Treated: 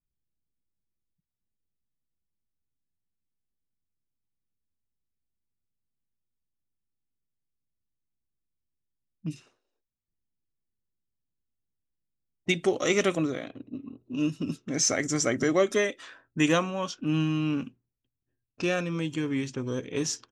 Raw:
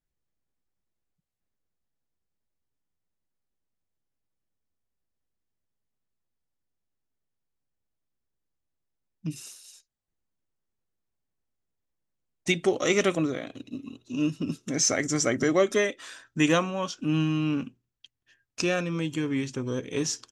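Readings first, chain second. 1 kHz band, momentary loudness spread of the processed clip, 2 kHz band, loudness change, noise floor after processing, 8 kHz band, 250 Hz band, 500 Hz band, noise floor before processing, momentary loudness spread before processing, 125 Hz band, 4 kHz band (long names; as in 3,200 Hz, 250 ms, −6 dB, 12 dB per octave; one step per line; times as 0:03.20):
−1.0 dB, 15 LU, −1.0 dB, −1.0 dB, −84 dBFS, −1.0 dB, −1.0 dB, −1.0 dB, −83 dBFS, 15 LU, −1.0 dB, −1.0 dB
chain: low-pass that shuts in the quiet parts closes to 300 Hz, open at −26 dBFS
level −1 dB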